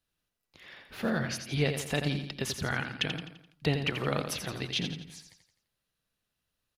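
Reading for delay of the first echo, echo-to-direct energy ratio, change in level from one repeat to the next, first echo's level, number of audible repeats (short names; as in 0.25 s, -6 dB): 85 ms, -6.5 dB, -7.0 dB, -7.5 dB, 4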